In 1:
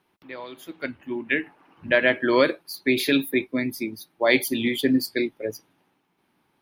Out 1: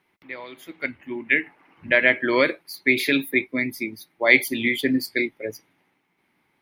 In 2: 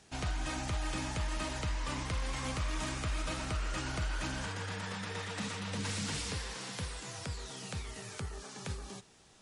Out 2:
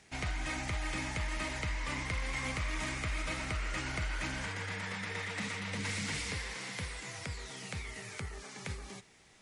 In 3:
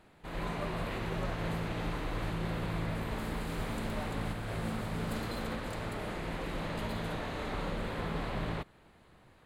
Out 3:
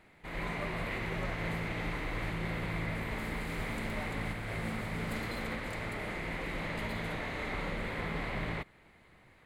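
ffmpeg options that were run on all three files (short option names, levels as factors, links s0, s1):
-af "equalizer=f=2100:t=o:w=0.39:g=11,volume=0.841"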